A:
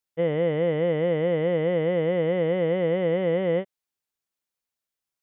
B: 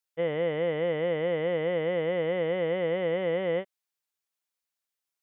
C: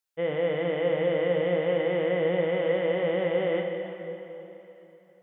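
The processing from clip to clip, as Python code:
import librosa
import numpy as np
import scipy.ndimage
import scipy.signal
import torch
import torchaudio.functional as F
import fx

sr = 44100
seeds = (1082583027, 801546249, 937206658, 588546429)

y1 = fx.low_shelf(x, sr, hz=410.0, db=-10.0)
y2 = fx.rev_plate(y1, sr, seeds[0], rt60_s=3.4, hf_ratio=0.85, predelay_ms=0, drr_db=2.0)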